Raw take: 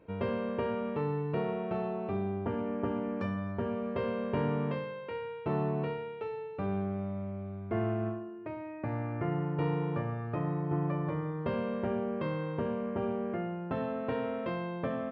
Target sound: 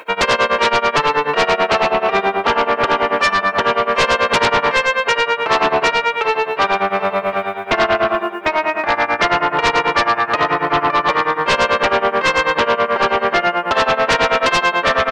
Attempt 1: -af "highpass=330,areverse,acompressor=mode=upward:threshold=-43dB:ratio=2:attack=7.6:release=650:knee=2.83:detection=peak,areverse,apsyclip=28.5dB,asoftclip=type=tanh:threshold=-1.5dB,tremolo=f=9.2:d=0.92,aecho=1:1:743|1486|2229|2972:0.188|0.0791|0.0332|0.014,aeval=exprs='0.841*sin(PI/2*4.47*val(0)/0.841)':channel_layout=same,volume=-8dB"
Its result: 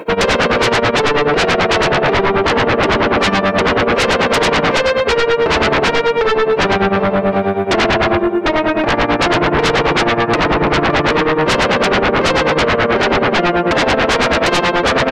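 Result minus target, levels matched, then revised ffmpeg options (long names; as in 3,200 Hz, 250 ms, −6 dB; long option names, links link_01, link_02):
250 Hz band +8.0 dB
-af "highpass=1100,areverse,acompressor=mode=upward:threshold=-43dB:ratio=2:attack=7.6:release=650:knee=2.83:detection=peak,areverse,apsyclip=28.5dB,asoftclip=type=tanh:threshold=-1.5dB,tremolo=f=9.2:d=0.92,aecho=1:1:743|1486|2229|2972:0.188|0.0791|0.0332|0.014,aeval=exprs='0.841*sin(PI/2*4.47*val(0)/0.841)':channel_layout=same,volume=-8dB"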